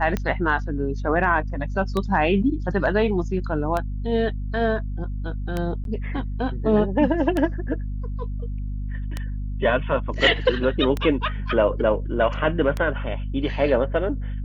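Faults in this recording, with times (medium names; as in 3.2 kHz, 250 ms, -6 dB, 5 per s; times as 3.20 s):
hum 50 Hz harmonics 5 -28 dBFS
tick 33 1/3 rpm -12 dBFS
5.84–5.85 s: dropout 12 ms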